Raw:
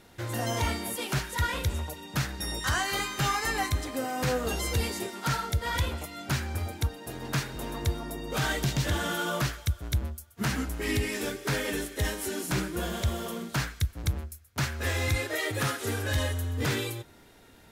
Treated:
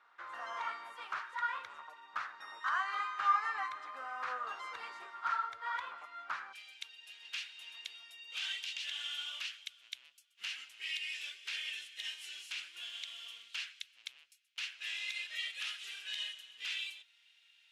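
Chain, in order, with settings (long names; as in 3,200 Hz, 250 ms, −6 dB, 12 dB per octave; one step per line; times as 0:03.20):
four-pole ladder band-pass 1,300 Hz, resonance 65%, from 0:06.52 3,100 Hz
level +3.5 dB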